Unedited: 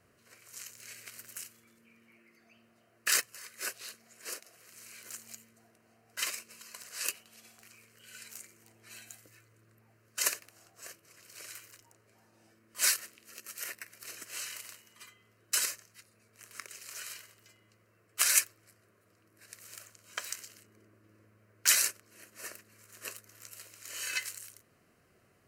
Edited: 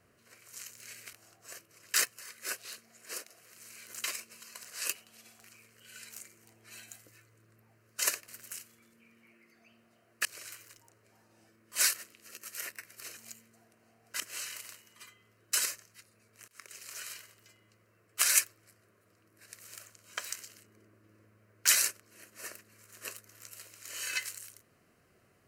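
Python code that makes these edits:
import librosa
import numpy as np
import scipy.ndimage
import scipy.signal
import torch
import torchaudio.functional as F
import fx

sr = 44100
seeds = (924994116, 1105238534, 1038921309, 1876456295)

y = fx.edit(x, sr, fx.swap(start_s=1.13, length_s=1.97, other_s=10.47, other_length_s=0.81),
    fx.move(start_s=5.2, length_s=1.03, to_s=14.2),
    fx.fade_in_from(start_s=16.48, length_s=0.29, floor_db=-23.0), tone=tone)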